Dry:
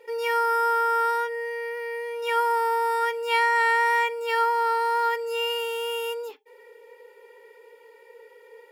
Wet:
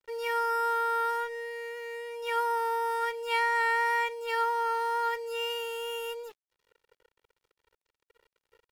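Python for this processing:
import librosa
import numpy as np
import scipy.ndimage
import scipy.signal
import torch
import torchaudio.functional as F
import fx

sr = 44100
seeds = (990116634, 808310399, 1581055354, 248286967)

y = np.sign(x) * np.maximum(np.abs(x) - 10.0 ** (-44.5 / 20.0), 0.0)
y = F.gain(torch.from_numpy(y), -5.0).numpy()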